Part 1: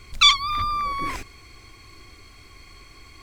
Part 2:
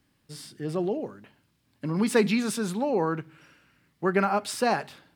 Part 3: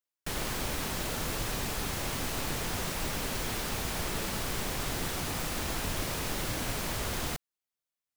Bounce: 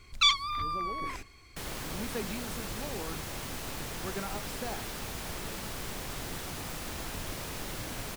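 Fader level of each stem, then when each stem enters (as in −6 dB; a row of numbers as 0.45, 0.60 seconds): −8.5, −15.5, −5.0 decibels; 0.00, 0.00, 1.30 seconds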